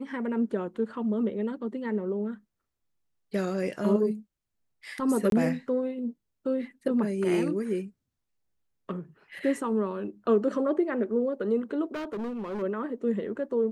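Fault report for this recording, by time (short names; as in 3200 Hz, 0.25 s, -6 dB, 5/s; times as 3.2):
5.3–5.32 gap 22 ms
11.86–12.63 clipped -30.5 dBFS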